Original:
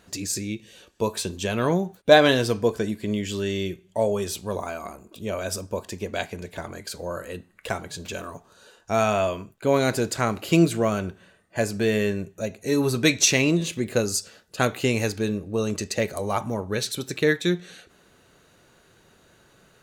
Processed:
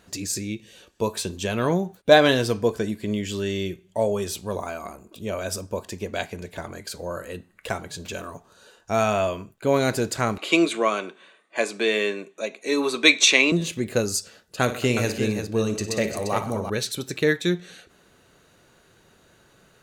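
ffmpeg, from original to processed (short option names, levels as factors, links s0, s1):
-filter_complex "[0:a]asettb=1/sr,asplit=3[s0][s1][s2];[s0]atrim=end=10.384[s3];[s1]atrim=start=10.38:end=13.52,asetpts=PTS-STARTPTS,afade=t=in:d=0.004:c=qsin,afade=t=out:st=3.136:d=0.004:c=qsin,highpass=f=270:w=0.5412,highpass=f=270:w=1.3066,equalizer=f=1100:t=q:w=4:g=8,equalizer=f=2300:t=q:w=4:g=9,equalizer=f=3600:t=q:w=4:g=9,equalizer=f=5200:t=q:w=4:g=-4,lowpass=f=9700:w=0.5412,lowpass=f=9700:w=1.3066[s4];[s2]atrim=start=13.516[s5];[s3][s4]acrossfade=d=0.004:c1=hsin:c2=qsin[s6];[s6][s5]acrossfade=d=0.004:c1=qsin:c2=hsin,asettb=1/sr,asplit=3[s7][s8][s9];[s7]atrim=end=14.624[s10];[s8]atrim=start=14.62:end=16.7,asetpts=PTS-STARTPTS,afade=t=in:d=0.004:c=qsin,afade=t=out:st=2.076:d=0.004:c=qsin,aecho=1:1:56|96|124|201|347:0.266|0.112|0.15|0.126|0.422,atrim=end_sample=91728[s11];[s9]atrim=start=16.696[s12];[s10][s11]acrossfade=d=0.004:c1=hsin:c2=qsin[s13];[s13][s12]acrossfade=d=0.004:c1=qsin:c2=hsin"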